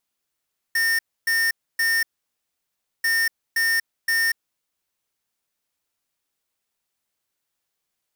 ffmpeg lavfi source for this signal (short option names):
-f lavfi -i "aevalsrc='0.0944*(2*lt(mod(1820*t,1),0.5)-1)*clip(min(mod(mod(t,2.29),0.52),0.24-mod(mod(t,2.29),0.52))/0.005,0,1)*lt(mod(t,2.29),1.56)':d=4.58:s=44100"